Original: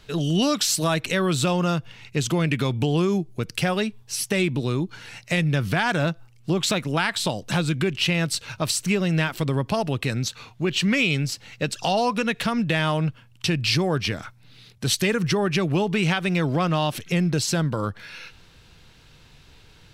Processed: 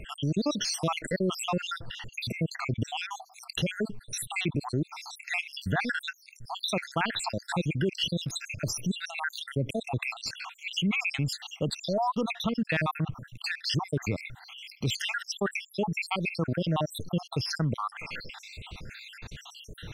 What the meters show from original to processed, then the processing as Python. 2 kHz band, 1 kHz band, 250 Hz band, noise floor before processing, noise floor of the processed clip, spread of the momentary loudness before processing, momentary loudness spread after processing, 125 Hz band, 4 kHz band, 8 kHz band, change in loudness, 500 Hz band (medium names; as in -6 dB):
-6.0 dB, -6.0 dB, -8.5 dB, -52 dBFS, -56 dBFS, 8 LU, 12 LU, -8.0 dB, -6.5 dB, -9.0 dB, -7.5 dB, -8.5 dB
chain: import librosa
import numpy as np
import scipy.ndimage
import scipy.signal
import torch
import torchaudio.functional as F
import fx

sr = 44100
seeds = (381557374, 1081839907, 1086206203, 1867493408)

y = fx.spec_dropout(x, sr, seeds[0], share_pct=74)
y = fx.high_shelf(y, sr, hz=5500.0, db=-10.0)
y = fx.env_flatten(y, sr, amount_pct=50)
y = y * 10.0 ** (-5.0 / 20.0)